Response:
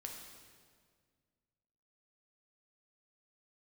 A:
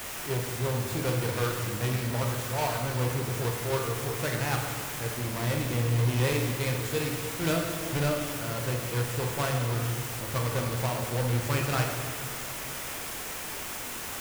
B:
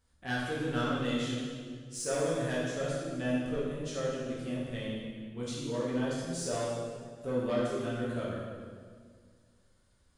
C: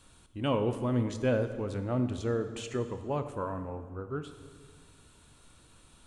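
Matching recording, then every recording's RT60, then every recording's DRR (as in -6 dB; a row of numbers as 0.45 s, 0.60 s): A; 1.8 s, 1.8 s, 1.8 s; 1.0 dB, -7.5 dB, 9.0 dB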